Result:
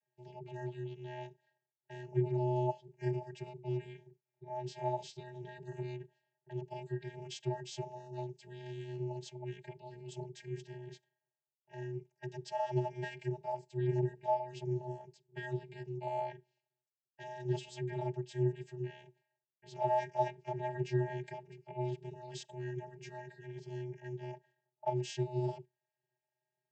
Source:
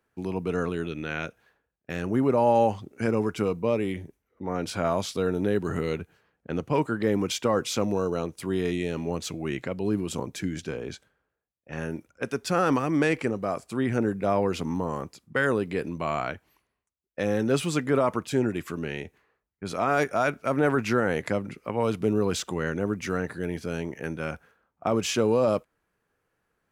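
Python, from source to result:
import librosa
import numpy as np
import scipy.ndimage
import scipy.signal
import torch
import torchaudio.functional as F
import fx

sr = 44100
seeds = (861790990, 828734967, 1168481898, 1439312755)

y = fx.vocoder(x, sr, bands=32, carrier='square', carrier_hz=249.0)
y = fx.fixed_phaser(y, sr, hz=510.0, stages=4)
y = y * np.sin(2.0 * np.pi * 120.0 * np.arange(len(y)) / sr)
y = fx.notch(y, sr, hz=2200.0, q=11.0)
y = y * librosa.db_to_amplitude(3.0)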